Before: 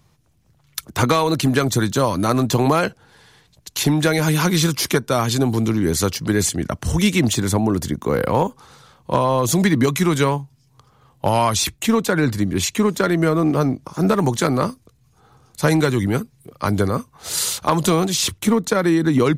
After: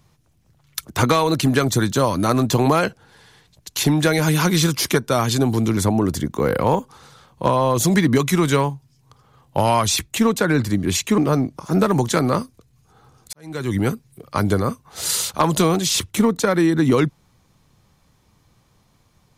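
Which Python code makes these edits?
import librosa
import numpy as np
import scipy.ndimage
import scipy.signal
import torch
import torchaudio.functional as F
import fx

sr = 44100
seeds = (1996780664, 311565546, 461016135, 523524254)

y = fx.edit(x, sr, fx.cut(start_s=5.77, length_s=1.68),
    fx.cut(start_s=12.86, length_s=0.6),
    fx.fade_in_span(start_s=15.61, length_s=0.44, curve='qua'), tone=tone)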